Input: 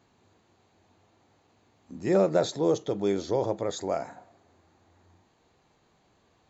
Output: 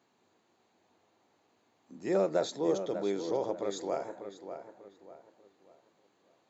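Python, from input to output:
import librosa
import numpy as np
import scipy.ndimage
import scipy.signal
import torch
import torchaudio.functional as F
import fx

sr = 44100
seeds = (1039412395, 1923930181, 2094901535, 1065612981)

y = scipy.signal.sosfilt(scipy.signal.butter(2, 220.0, 'highpass', fs=sr, output='sos'), x)
y = fx.echo_filtered(y, sr, ms=592, feedback_pct=35, hz=2900.0, wet_db=-9.0)
y = y * 10.0 ** (-5.0 / 20.0)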